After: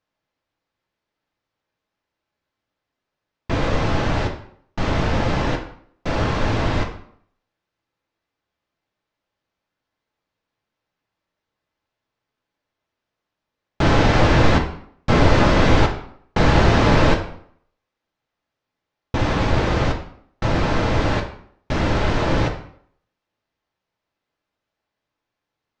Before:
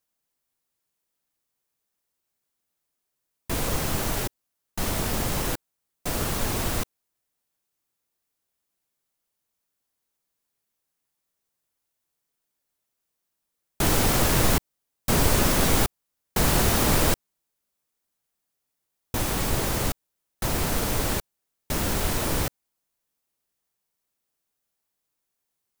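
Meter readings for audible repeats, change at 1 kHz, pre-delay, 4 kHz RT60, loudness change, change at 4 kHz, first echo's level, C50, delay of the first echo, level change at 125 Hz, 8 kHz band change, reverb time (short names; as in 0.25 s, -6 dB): none, +8.0 dB, 3 ms, 0.45 s, +5.0 dB, +2.0 dB, none, 8.5 dB, none, +8.5 dB, -11.5 dB, 0.60 s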